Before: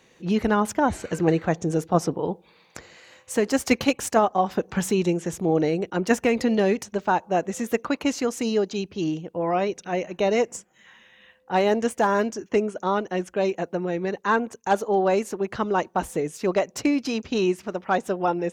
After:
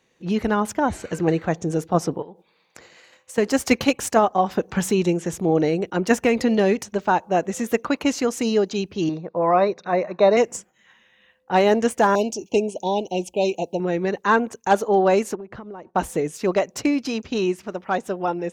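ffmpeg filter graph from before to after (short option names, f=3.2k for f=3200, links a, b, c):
-filter_complex "[0:a]asettb=1/sr,asplit=3[a][b][c];[a]atrim=end=2.224[d];[b]atrim=start=2.22:end=3.38,asetpts=PTS-STARTPTS,afade=t=in:d=0.004:c=qsin,afade=t=out:st=1.156:d=0.004:c=qsin,highpass=f=170:p=1,acompressor=threshold=-38dB:ratio=8:attack=3.2:release=140:knee=1:detection=peak[e];[c]atrim=start=3.376[f];[d][e]acrossfade=d=0.004:c1=hsin:c2=qsin[g];[g][f]acrossfade=d=0.004:c1=qsin:c2=hsin,asettb=1/sr,asplit=3[h][i][j];[h]atrim=end=9.094[k];[i]atrim=start=9.09:end=10.37,asetpts=PTS-STARTPTS,afade=t=in:d=0.004:c=qsin,afade=t=out:st=1.276:d=0.004:c=qsin,asuperstop=centerf=3100:order=4:qfactor=2.3,highpass=140,equalizer=f=280:t=q:w=4:g=-7,equalizer=f=610:t=q:w=4:g=5,equalizer=f=1.1k:t=q:w=4:g=8,equalizer=f=2.3k:t=q:w=4:g=-3,equalizer=f=3.6k:t=q:w=4:g=8,lowpass=f=4.3k:w=0.5412,lowpass=f=4.3k:w=1.3066[l];[j]atrim=start=10.366[m];[k][l]acrossfade=d=0.004:c1=hsin:c2=qsin[n];[n][m]acrossfade=d=0.004:c1=qsin:c2=hsin,asettb=1/sr,asplit=3[o][p][q];[o]atrim=end=12.154[r];[p]atrim=start=12.15:end=13.8,asetpts=PTS-STARTPTS,afade=t=in:d=0.004:c=qsin,afade=t=out:st=1.646:d=0.004:c=qsin,asuperstop=centerf=1500:order=12:qfactor=0.99,tiltshelf=f=770:g=-3.5[s];[q]atrim=start=13.796[t];[r][s]acrossfade=d=0.004:c1=hsin:c2=qsin[u];[u][t]acrossfade=d=0.004:c1=qsin:c2=hsin,asettb=1/sr,asplit=3[v][w][x];[v]atrim=end=15.354[y];[w]atrim=start=15.35:end=15.95,asetpts=PTS-STARTPTS,afade=t=in:d=0.004:c=qsin,afade=t=out:st=0.596:d=0.004:c=qsin,lowpass=f=1k:p=1,acompressor=threshold=-36dB:ratio=10:attack=3.2:release=140:knee=1:detection=peak[z];[x]atrim=start=15.946[aa];[y][z]acrossfade=d=0.004:c1=hsin:c2=qsin[ab];[ab][aa]acrossfade=d=0.004:c1=qsin:c2=hsin,agate=range=-8dB:threshold=-49dB:ratio=16:detection=peak,dynaudnorm=f=280:g=17:m=4dB"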